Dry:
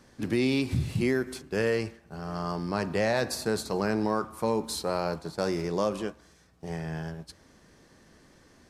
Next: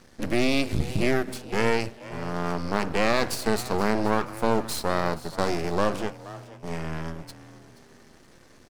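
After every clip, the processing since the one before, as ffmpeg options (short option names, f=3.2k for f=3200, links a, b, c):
-filter_complex "[0:a]bandreject=f=60:t=h:w=6,bandreject=f=120:t=h:w=6,aeval=exprs='max(val(0),0)':c=same,asplit=4[a][b][c][d];[b]adelay=477,afreqshift=120,volume=-17dB[e];[c]adelay=954,afreqshift=240,volume=-26.6dB[f];[d]adelay=1431,afreqshift=360,volume=-36.3dB[g];[a][e][f][g]amix=inputs=4:normalize=0,volume=7dB"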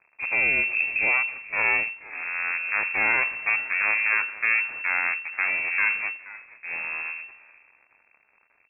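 -af "aeval=exprs='sgn(val(0))*max(abs(val(0))-0.00335,0)':c=same,lowpass=f=2.3k:t=q:w=0.5098,lowpass=f=2.3k:t=q:w=0.6013,lowpass=f=2.3k:t=q:w=0.9,lowpass=f=2.3k:t=q:w=2.563,afreqshift=-2700"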